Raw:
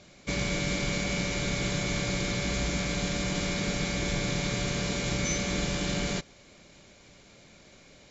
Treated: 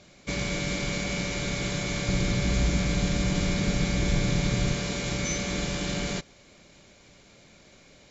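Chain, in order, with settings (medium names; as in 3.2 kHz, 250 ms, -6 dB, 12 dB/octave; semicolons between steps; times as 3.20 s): 2.08–4.75 s: bass shelf 210 Hz +9 dB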